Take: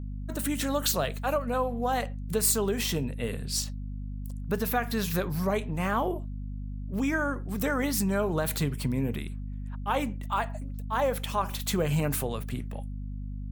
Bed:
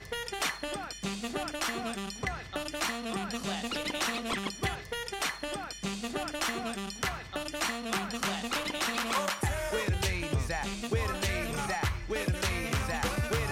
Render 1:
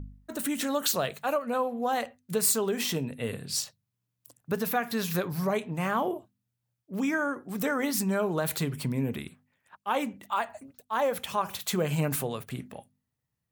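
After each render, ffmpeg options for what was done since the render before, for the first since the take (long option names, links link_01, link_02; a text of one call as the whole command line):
ffmpeg -i in.wav -af "bandreject=frequency=50:width_type=h:width=4,bandreject=frequency=100:width_type=h:width=4,bandreject=frequency=150:width_type=h:width=4,bandreject=frequency=200:width_type=h:width=4,bandreject=frequency=250:width_type=h:width=4" out.wav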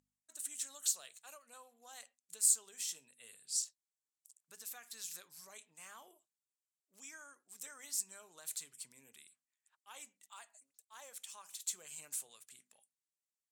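ffmpeg -i in.wav -af "bandpass=frequency=7700:width_type=q:width=2.8:csg=0" out.wav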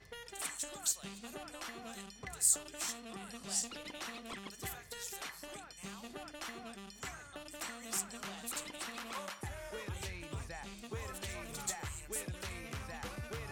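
ffmpeg -i in.wav -i bed.wav -filter_complex "[1:a]volume=-13dB[link_01];[0:a][link_01]amix=inputs=2:normalize=0" out.wav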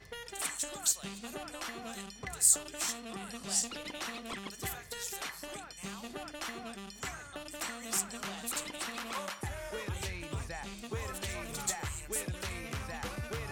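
ffmpeg -i in.wav -af "volume=4.5dB" out.wav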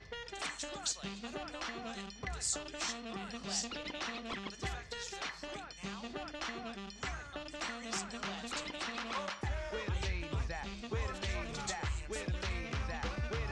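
ffmpeg -i in.wav -af "lowpass=frequency=5900:width=0.5412,lowpass=frequency=5900:width=1.3066,equalizer=frequency=60:width_type=o:width=0.28:gain=10.5" out.wav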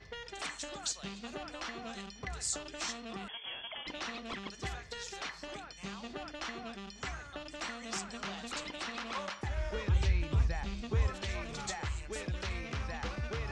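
ffmpeg -i in.wav -filter_complex "[0:a]asettb=1/sr,asplit=3[link_01][link_02][link_03];[link_01]atrim=end=3.284[link_04];[link_02]atrim=start=3.28:end=3.87,asetpts=PTS-STARTPTS,afade=type=in:duration=0.004:curve=qsin,afade=type=out:start_time=0.586:duration=0.004:curve=qsin,lowpass=frequency=3000:width_type=q:width=0.5098,lowpass=frequency=3000:width_type=q:width=0.6013,lowpass=frequency=3000:width_type=q:width=0.9,lowpass=frequency=3000:width_type=q:width=2.563,afreqshift=-3500[link_05];[link_03]atrim=start=3.866[link_06];[link_04][link_05]acrossfade=duration=0.004:curve1=hsin:curve2=qsin[link_07];[link_07][link_06]acrossfade=duration=0.004:curve1=qsin:curve2=hsin,asettb=1/sr,asplit=3[link_08][link_09][link_10];[link_08]atrim=end=9.574[link_11];[link_09]atrim=start=9.57:end=11.1,asetpts=PTS-STARTPTS,afade=type=in:duration=0.004:curve=qsin,afade=type=out:start_time=1.526:duration=0.004:curve=qsin,lowshelf=frequency=160:gain=10.5[link_12];[link_10]atrim=start=11.096[link_13];[link_11][link_12]acrossfade=duration=0.004:curve1=hsin:curve2=qsin[link_14];[link_14][link_13]acrossfade=duration=0.004:curve1=qsin:curve2=hsin" out.wav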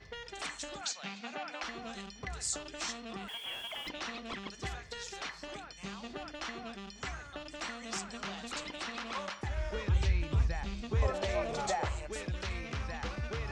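ffmpeg -i in.wav -filter_complex "[0:a]asettb=1/sr,asplit=3[link_01][link_02][link_03];[link_01]atrim=end=0.814[link_04];[link_02]atrim=start=0.81:end=1.63,asetpts=PTS-STARTPTS,afade=type=in:duration=0.004:curve=qsin,afade=type=out:start_time=0.816:duration=0.004:curve=qsin,highpass=frequency=180:width=0.5412,highpass=frequency=180:width=1.3066,equalizer=frequency=360:width_type=q:width=4:gain=-10,equalizer=frequency=800:width_type=q:width=4:gain=7,equalizer=frequency=1500:width_type=q:width=4:gain=5,equalizer=frequency=2300:width_type=q:width=4:gain=8,lowpass=frequency=7000:width=0.5412,lowpass=frequency=7000:width=1.3066[link_05];[link_03]atrim=start=1.626[link_06];[link_04][link_05]acrossfade=duration=0.004:curve1=hsin:curve2=qsin[link_07];[link_07][link_06]acrossfade=duration=0.004:curve1=qsin:curve2=hsin,asettb=1/sr,asplit=3[link_08][link_09][link_10];[link_08]atrim=end=3.284[link_11];[link_09]atrim=start=3.28:end=3.89,asetpts=PTS-STARTPTS,afade=type=in:duration=0.004:curve=qsin,afade=type=out:start_time=0.606:duration=0.004:curve=qsin,aeval=exprs='val(0)+0.5*0.00447*sgn(val(0))':channel_layout=same[link_12];[link_10]atrim=start=3.886[link_13];[link_11][link_12]acrossfade=duration=0.004:curve1=hsin:curve2=qsin[link_14];[link_14][link_13]acrossfade=duration=0.004:curve1=qsin:curve2=hsin,asettb=1/sr,asplit=3[link_15][link_16][link_17];[link_15]atrim=end=11.024[link_18];[link_16]atrim=start=11.02:end=12.07,asetpts=PTS-STARTPTS,afade=type=in:duration=0.004:curve=qsin,afade=type=out:start_time=1.046:duration=0.004:curve=qsin,equalizer=frequency=610:width_type=o:width=1.3:gain=13.5[link_19];[link_17]atrim=start=12.066[link_20];[link_18][link_19]acrossfade=duration=0.004:curve1=hsin:curve2=qsin[link_21];[link_21][link_20]acrossfade=duration=0.004:curve1=qsin:curve2=hsin" out.wav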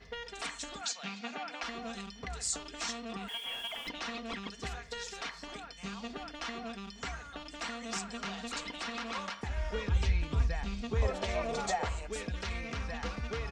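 ffmpeg -i in.wav -af "aecho=1:1:4.3:0.5" out.wav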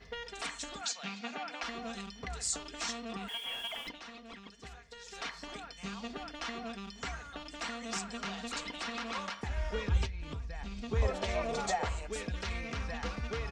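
ffmpeg -i in.wav -filter_complex "[0:a]asettb=1/sr,asplit=3[link_01][link_02][link_03];[link_01]atrim=end=10.054[link_04];[link_02]atrim=start=10.05:end=10.92,asetpts=PTS-STARTPTS,afade=type=in:duration=0.004:curve=qsin,afade=type=out:start_time=0.866:duration=0.004:curve=qsin,acompressor=threshold=-36dB:ratio=12:attack=3.2:release=140:knee=1:detection=peak[link_05];[link_03]atrim=start=10.916[link_06];[link_04][link_05]acrossfade=duration=0.004:curve1=hsin:curve2=qsin[link_07];[link_07][link_06]acrossfade=duration=0.004:curve1=qsin:curve2=hsin,asplit=3[link_08][link_09][link_10];[link_08]atrim=end=3.99,asetpts=PTS-STARTPTS,afade=type=out:start_time=3.81:duration=0.18:silence=0.334965[link_11];[link_09]atrim=start=3.99:end=5.04,asetpts=PTS-STARTPTS,volume=-9.5dB[link_12];[link_10]atrim=start=5.04,asetpts=PTS-STARTPTS,afade=type=in:duration=0.18:silence=0.334965[link_13];[link_11][link_12][link_13]concat=n=3:v=0:a=1" out.wav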